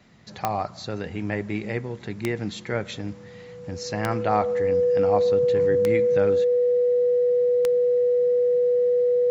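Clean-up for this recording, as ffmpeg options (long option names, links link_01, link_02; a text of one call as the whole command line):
ffmpeg -i in.wav -af "adeclick=threshold=4,bandreject=frequency=490:width=30" out.wav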